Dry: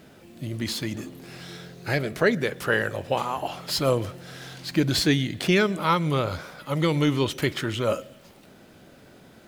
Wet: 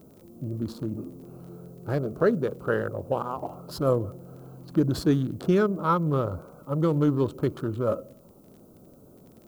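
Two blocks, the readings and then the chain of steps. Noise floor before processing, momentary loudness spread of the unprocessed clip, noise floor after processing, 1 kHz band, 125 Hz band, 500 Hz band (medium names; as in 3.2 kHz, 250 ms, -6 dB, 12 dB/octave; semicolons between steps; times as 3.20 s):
-52 dBFS, 16 LU, -53 dBFS, -2.5 dB, -0.5 dB, -0.5 dB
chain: local Wiener filter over 25 samples; FFT filter 480 Hz 0 dB, 820 Hz -7 dB, 1.3 kHz -3 dB, 2 kHz -24 dB, 12 kHz -14 dB; added noise violet -72 dBFS; tilt shelf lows -4 dB, about 1.1 kHz; crackle 20 per s -47 dBFS; trim +3.5 dB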